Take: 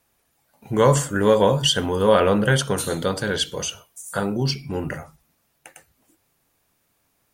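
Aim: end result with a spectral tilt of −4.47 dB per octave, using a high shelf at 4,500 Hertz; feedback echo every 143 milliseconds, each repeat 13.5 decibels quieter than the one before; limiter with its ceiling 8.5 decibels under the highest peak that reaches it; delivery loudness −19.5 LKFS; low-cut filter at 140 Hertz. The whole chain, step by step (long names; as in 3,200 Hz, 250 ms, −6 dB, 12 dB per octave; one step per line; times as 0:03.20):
high-pass filter 140 Hz
high-shelf EQ 4,500 Hz −5.5 dB
brickwall limiter −11.5 dBFS
repeating echo 143 ms, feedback 21%, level −13.5 dB
level +4.5 dB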